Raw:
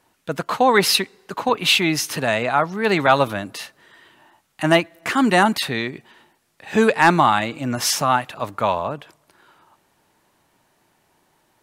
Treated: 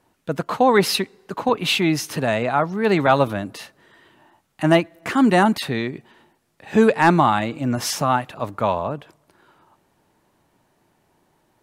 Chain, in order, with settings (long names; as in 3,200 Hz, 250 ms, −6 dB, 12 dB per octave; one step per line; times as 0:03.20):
tilt shelving filter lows +4 dB, about 820 Hz
level −1 dB